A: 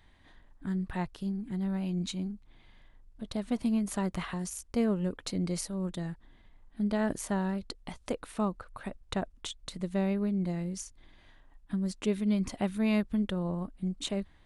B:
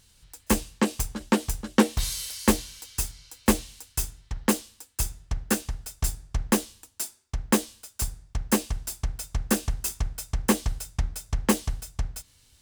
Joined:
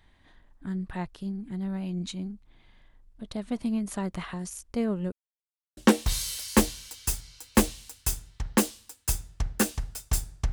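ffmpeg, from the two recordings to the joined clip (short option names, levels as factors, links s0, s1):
-filter_complex "[0:a]apad=whole_dur=10.52,atrim=end=10.52,asplit=2[s0][s1];[s0]atrim=end=5.12,asetpts=PTS-STARTPTS,afade=t=out:st=5.116:d=0.004:c=hsin[s2];[s1]atrim=start=5.12:end=5.77,asetpts=PTS-STARTPTS,volume=0[s3];[1:a]atrim=start=1.68:end=6.43,asetpts=PTS-STARTPTS,afade=t=in:d=0.004:c=hsin[s4];[s2][s3][s4]concat=n=3:v=0:a=1"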